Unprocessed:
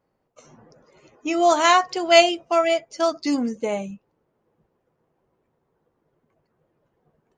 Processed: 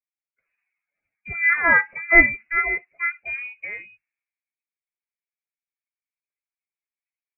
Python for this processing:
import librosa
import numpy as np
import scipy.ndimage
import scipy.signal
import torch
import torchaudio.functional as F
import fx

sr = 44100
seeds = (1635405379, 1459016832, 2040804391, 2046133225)

y = fx.peak_eq(x, sr, hz=65.0, db=-13.5, octaves=2.3)
y = fx.freq_invert(y, sr, carrier_hz=2700)
y = fx.band_widen(y, sr, depth_pct=70)
y = y * 10.0 ** (-3.0 / 20.0)